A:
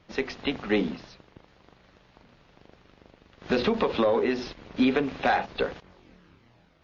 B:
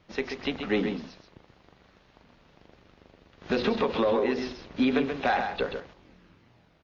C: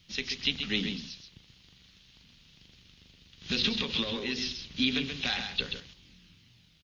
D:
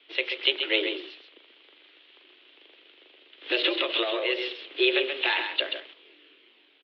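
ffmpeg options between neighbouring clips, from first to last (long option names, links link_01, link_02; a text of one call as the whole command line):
ffmpeg -i in.wav -af "aecho=1:1:133:0.447,volume=-2dB" out.wav
ffmpeg -i in.wav -af "firequalizer=gain_entry='entry(160,0);entry(330,-11);entry(620,-18);entry(3100,10)':delay=0.05:min_phase=1" out.wav
ffmpeg -i in.wav -af "highpass=frequency=260:width_type=q:width=0.5412,highpass=frequency=260:width_type=q:width=1.307,lowpass=frequency=3100:width_type=q:width=0.5176,lowpass=frequency=3100:width_type=q:width=0.7071,lowpass=frequency=3100:width_type=q:width=1.932,afreqshift=120,volume=8.5dB" out.wav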